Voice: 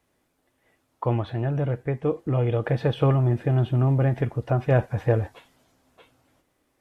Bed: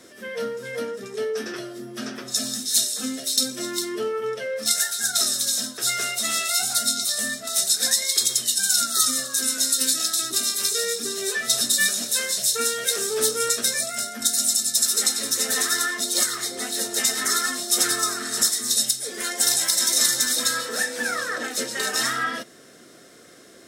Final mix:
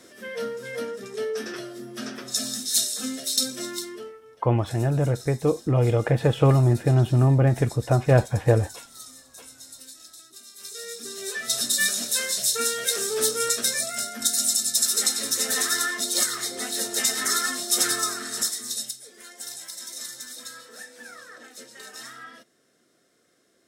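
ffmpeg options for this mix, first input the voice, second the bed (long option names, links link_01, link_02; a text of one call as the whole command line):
ffmpeg -i stem1.wav -i stem2.wav -filter_complex "[0:a]adelay=3400,volume=2.5dB[link_01];[1:a]volume=19.5dB,afade=type=out:start_time=3.56:duration=0.64:silence=0.0891251,afade=type=in:start_time=10.51:duration=1.43:silence=0.0841395,afade=type=out:start_time=17.9:duration=1.22:silence=0.16788[link_02];[link_01][link_02]amix=inputs=2:normalize=0" out.wav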